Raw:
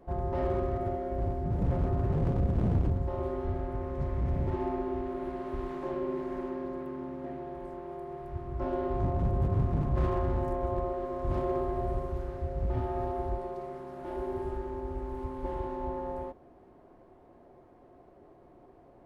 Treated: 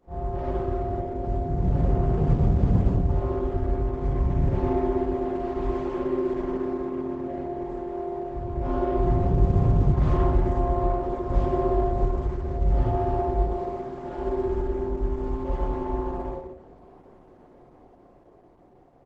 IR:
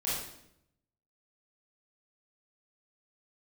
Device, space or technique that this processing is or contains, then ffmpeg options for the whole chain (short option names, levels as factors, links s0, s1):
speakerphone in a meeting room: -filter_complex "[0:a]asettb=1/sr,asplit=3[s0][s1][s2];[s0]atrim=end=11.354[s3];[s1]atrim=start=11.35:end=12.81,asetpts=PTS-STARTPTS,afade=t=in:d=0.004:c=qsin,afade=t=out:st=1.456:d=0.004:c=qsin,bandreject=f=1300:w=24[s4];[s2]atrim=start=12.806[s5];[s3][s4]acrossfade=d=0.004:c1=hsin:c2=qsin[s6];[s6][s5]acrossfade=d=0.004:c1=qsin:c2=hsin[s7];[1:a]atrim=start_sample=2205[s8];[s7][s8]afir=irnorm=-1:irlink=0,asplit=2[s9][s10];[s10]adelay=160,highpass=300,lowpass=3400,asoftclip=type=hard:threshold=0.158,volume=0.2[s11];[s9][s11]amix=inputs=2:normalize=0,dynaudnorm=f=370:g=9:m=2,volume=0.562" -ar 48000 -c:a libopus -b:a 12k